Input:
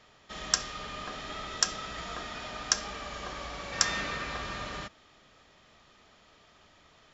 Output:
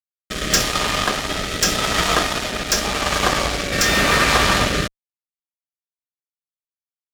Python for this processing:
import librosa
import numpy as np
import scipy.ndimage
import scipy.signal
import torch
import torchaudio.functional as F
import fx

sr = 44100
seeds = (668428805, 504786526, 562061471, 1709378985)

y = fx.hpss(x, sr, part='harmonic', gain_db=-4)
y = fx.fuzz(y, sr, gain_db=36.0, gate_db=-43.0)
y = fx.rotary(y, sr, hz=0.85)
y = F.gain(torch.from_numpy(y), 6.5).numpy()